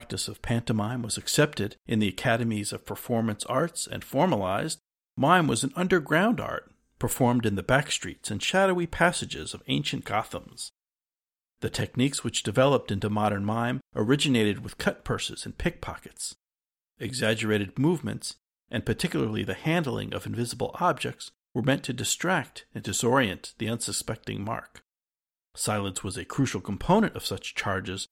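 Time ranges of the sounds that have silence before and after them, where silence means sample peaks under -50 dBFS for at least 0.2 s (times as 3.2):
5.18–6.71
7.01–10.69
11.62–16.34
17–18.34
18.71–21.29
21.55–24.79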